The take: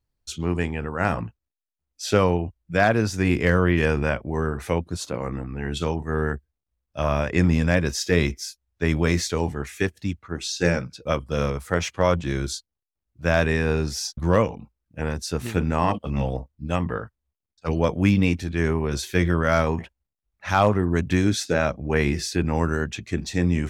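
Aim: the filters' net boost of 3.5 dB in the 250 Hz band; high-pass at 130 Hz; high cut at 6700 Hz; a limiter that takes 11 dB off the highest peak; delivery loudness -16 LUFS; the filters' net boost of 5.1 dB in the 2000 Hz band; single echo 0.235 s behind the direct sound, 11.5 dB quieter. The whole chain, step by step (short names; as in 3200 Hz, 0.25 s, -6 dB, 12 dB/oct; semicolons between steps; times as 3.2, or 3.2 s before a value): HPF 130 Hz; LPF 6700 Hz; bell 250 Hz +5.5 dB; bell 2000 Hz +6.5 dB; limiter -13.5 dBFS; echo 0.235 s -11.5 dB; gain +10 dB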